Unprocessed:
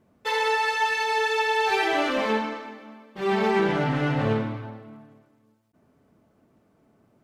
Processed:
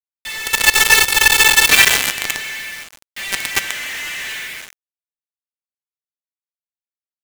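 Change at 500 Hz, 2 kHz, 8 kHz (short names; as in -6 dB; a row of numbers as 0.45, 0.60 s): -7.0, +12.5, +26.5 dB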